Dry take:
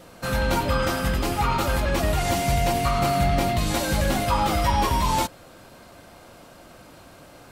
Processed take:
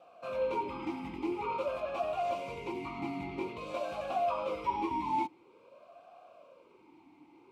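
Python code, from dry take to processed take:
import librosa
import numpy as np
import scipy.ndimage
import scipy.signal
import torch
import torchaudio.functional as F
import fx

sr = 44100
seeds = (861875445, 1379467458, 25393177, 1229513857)

y = fx.vowel_sweep(x, sr, vowels='a-u', hz=0.49)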